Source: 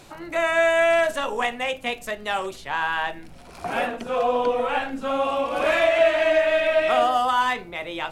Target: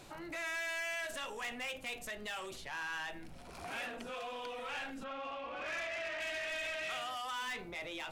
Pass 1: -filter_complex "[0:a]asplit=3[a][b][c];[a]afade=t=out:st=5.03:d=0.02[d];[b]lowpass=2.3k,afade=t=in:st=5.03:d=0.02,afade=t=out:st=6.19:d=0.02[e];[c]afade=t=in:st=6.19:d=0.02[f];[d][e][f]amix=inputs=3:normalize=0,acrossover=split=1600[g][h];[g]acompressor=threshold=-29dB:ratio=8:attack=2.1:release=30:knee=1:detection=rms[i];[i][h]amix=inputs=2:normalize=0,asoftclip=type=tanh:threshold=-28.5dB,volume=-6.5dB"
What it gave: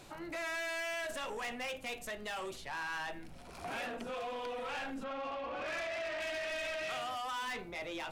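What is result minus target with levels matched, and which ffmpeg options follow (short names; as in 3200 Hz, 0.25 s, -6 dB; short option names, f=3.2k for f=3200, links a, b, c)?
compressor: peak gain reduction -5.5 dB
-filter_complex "[0:a]asplit=3[a][b][c];[a]afade=t=out:st=5.03:d=0.02[d];[b]lowpass=2.3k,afade=t=in:st=5.03:d=0.02,afade=t=out:st=6.19:d=0.02[e];[c]afade=t=in:st=6.19:d=0.02[f];[d][e][f]amix=inputs=3:normalize=0,acrossover=split=1600[g][h];[g]acompressor=threshold=-35.5dB:ratio=8:attack=2.1:release=30:knee=1:detection=rms[i];[i][h]amix=inputs=2:normalize=0,asoftclip=type=tanh:threshold=-28.5dB,volume=-6.5dB"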